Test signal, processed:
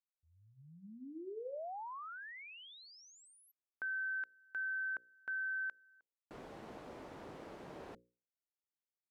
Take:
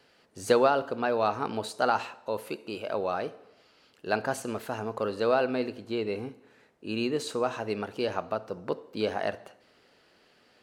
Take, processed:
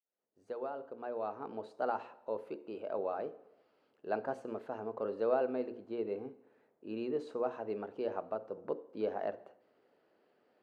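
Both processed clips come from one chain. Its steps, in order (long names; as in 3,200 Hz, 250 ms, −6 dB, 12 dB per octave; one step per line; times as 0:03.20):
fade in at the beginning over 2.24 s
resonant band-pass 460 Hz, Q 0.85
mains-hum notches 60/120/180/240/300/360/420/480/540 Hz
level −4.5 dB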